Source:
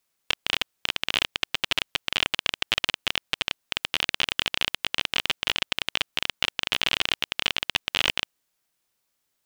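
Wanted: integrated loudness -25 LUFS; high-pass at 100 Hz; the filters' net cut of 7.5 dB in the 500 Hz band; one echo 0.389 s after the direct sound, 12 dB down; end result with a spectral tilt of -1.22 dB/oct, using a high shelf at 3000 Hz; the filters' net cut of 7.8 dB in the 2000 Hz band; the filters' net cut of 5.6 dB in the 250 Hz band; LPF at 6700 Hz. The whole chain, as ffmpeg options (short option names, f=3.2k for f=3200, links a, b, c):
-af "highpass=100,lowpass=6.7k,equalizer=f=250:t=o:g=-4.5,equalizer=f=500:t=o:g=-8,equalizer=f=2k:t=o:g=-7.5,highshelf=f=3k:g=-5.5,aecho=1:1:389:0.251,volume=7.5dB"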